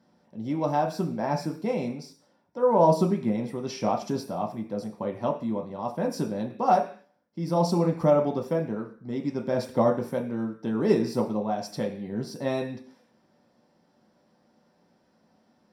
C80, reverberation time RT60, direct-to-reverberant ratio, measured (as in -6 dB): 15.5 dB, 0.45 s, 1.5 dB